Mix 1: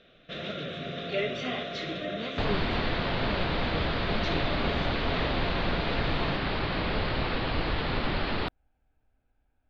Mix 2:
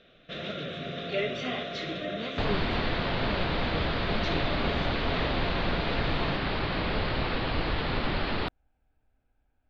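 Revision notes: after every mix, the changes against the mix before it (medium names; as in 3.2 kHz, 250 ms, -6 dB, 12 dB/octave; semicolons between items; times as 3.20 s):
no change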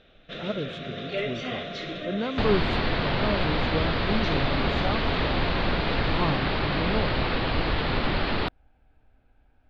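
speech +11.0 dB; second sound +3.5 dB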